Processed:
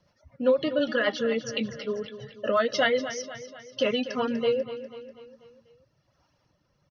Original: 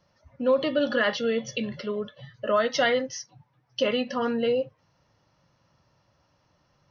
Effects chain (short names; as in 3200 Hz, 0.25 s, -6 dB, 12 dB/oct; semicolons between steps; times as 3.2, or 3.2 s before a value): reverb removal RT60 1.3 s; rotary speaker horn 8 Hz, later 1.2 Hz, at 4.24; feedback echo 0.245 s, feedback 52%, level -12.5 dB; gain +2.5 dB